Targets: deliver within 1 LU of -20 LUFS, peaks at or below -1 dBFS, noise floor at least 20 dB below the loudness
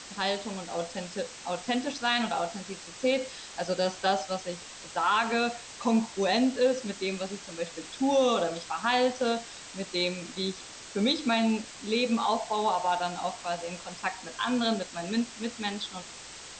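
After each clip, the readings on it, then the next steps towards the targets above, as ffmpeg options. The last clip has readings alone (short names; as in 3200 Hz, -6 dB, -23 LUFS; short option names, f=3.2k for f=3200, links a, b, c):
noise floor -45 dBFS; noise floor target -50 dBFS; loudness -29.5 LUFS; peak -14.0 dBFS; loudness target -20.0 LUFS
-> -af "afftdn=nr=6:nf=-45"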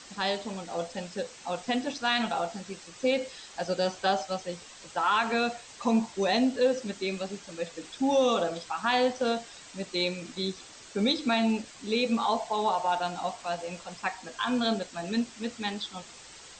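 noise floor -49 dBFS; noise floor target -50 dBFS
-> -af "afftdn=nr=6:nf=-49"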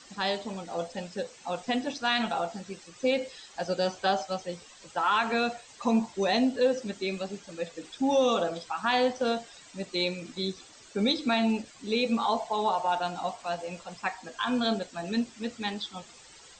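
noise floor -52 dBFS; loudness -29.5 LUFS; peak -14.0 dBFS; loudness target -20.0 LUFS
-> -af "volume=9.5dB"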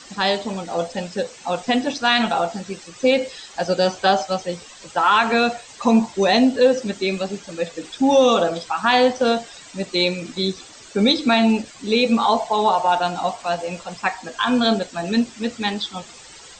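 loudness -20.0 LUFS; peak -4.5 dBFS; noise floor -43 dBFS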